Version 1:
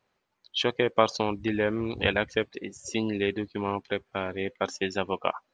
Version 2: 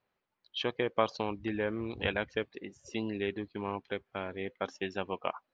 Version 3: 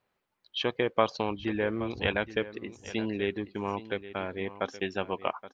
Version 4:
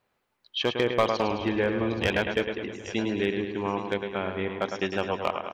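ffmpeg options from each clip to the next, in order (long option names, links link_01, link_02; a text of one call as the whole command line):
ffmpeg -i in.wav -af "lowpass=4200,volume=-6.5dB" out.wav
ffmpeg -i in.wav -af "aecho=1:1:823:0.178,volume=3.5dB" out.wav
ffmpeg -i in.wav -af "aecho=1:1:106|212|318|424|530|636|742:0.447|0.259|0.15|0.0872|0.0505|0.0293|0.017,volume=16.5dB,asoftclip=hard,volume=-16.5dB,volume=3dB" out.wav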